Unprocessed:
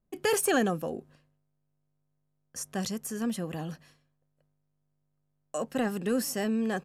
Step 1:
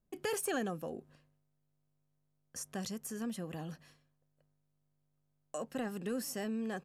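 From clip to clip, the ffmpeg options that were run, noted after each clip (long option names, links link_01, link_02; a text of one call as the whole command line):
ffmpeg -i in.wav -af "acompressor=threshold=-44dB:ratio=1.5,volume=-2dB" out.wav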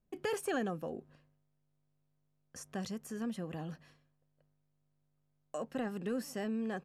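ffmpeg -i in.wav -af "highshelf=frequency=5500:gain=-11,volume=1dB" out.wav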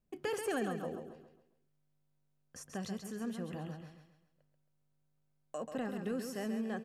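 ffmpeg -i in.wav -af "aecho=1:1:135|270|405|540|675:0.447|0.174|0.0679|0.0265|0.0103,volume=-1.5dB" out.wav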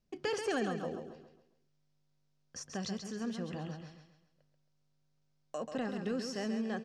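ffmpeg -i in.wav -af "lowpass=frequency=5400:width_type=q:width=2.3,volume=1.5dB" out.wav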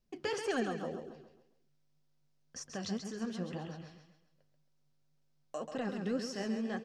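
ffmpeg -i in.wav -af "flanger=delay=1.6:depth=9.8:regen=49:speed=1.9:shape=triangular,volume=3.5dB" out.wav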